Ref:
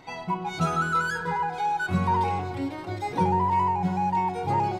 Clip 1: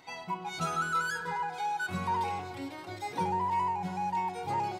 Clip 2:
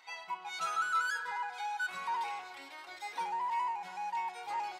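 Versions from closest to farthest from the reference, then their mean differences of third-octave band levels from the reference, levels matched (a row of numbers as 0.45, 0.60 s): 1, 2; 3.5, 10.5 dB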